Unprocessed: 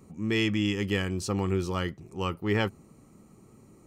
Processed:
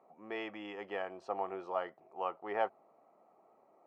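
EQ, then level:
four-pole ladder band-pass 750 Hz, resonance 70%
+7.5 dB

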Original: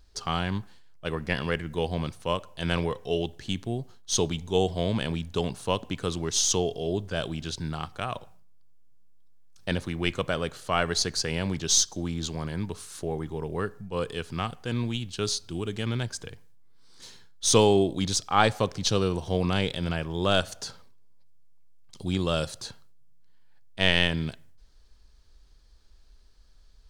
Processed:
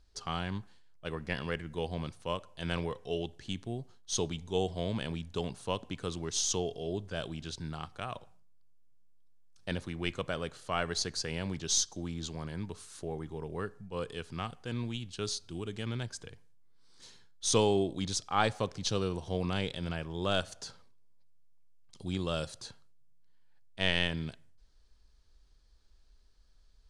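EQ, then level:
low-pass filter 11,000 Hz 24 dB per octave
−7.0 dB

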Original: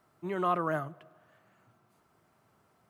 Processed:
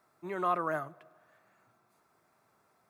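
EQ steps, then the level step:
low-shelf EQ 240 Hz −11 dB
notch filter 3,000 Hz, Q 6.4
0.0 dB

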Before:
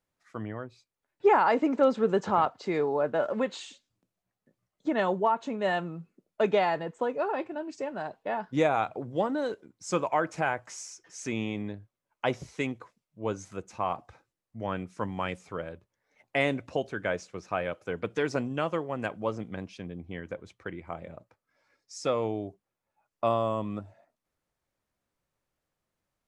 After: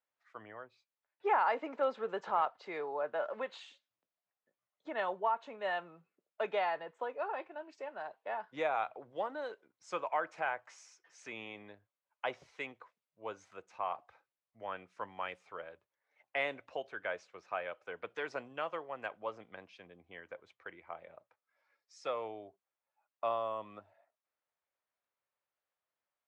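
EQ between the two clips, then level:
high-pass filter 51 Hz
three-way crossover with the lows and the highs turned down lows −19 dB, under 490 Hz, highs −16 dB, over 4,100 Hz
−5.5 dB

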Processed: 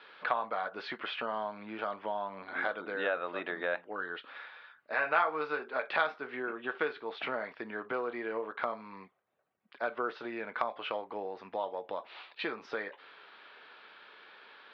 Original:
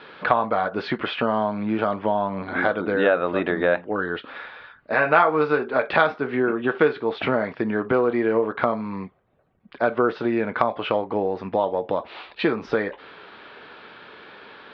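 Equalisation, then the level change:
high-pass filter 980 Hz 6 dB per octave
−8.0 dB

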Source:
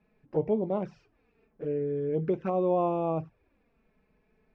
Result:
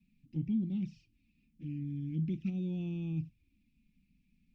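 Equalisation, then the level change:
inverse Chebyshev band-stop filter 420–1,600 Hz, stop band 40 dB
parametric band 570 Hz +8 dB 1.4 octaves
parametric band 1,400 Hz +10.5 dB 0.61 octaves
0.0 dB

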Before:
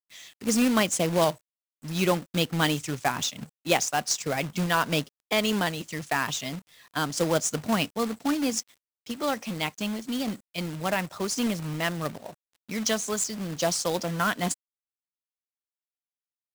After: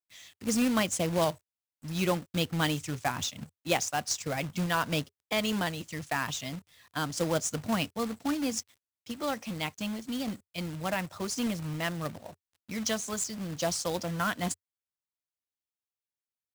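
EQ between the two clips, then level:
parametric band 88 Hz +11.5 dB 0.74 octaves
notch filter 410 Hz, Q 12
−4.5 dB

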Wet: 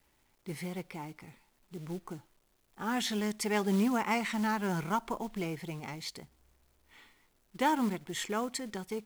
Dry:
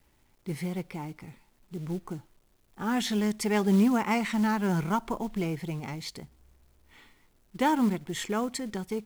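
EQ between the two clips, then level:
low-shelf EQ 320 Hz −7 dB
−1.5 dB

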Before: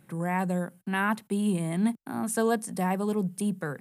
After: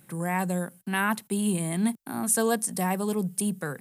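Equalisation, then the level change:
high-shelf EQ 4,000 Hz +11 dB
0.0 dB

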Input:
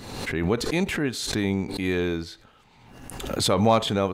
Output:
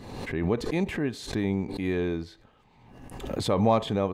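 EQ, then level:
high-shelf EQ 2,600 Hz −11 dB
notch filter 1,400 Hz, Q 7
−2.0 dB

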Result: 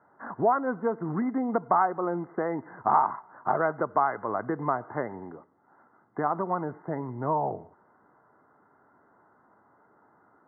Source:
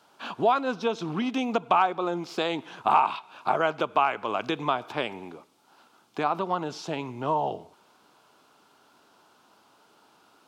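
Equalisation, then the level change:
linear-phase brick-wall low-pass 2,100 Hz
high-frequency loss of the air 290 metres
parametric band 100 Hz +5 dB 1.1 octaves
0.0 dB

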